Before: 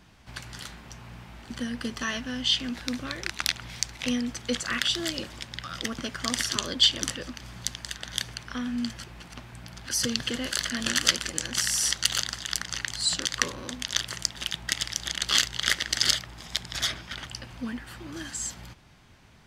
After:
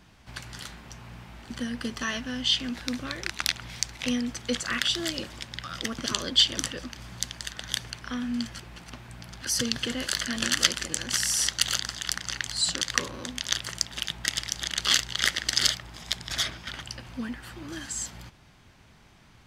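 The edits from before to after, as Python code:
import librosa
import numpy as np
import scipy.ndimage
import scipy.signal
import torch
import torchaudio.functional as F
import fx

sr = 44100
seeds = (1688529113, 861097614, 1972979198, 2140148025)

y = fx.edit(x, sr, fx.cut(start_s=6.06, length_s=0.44), tone=tone)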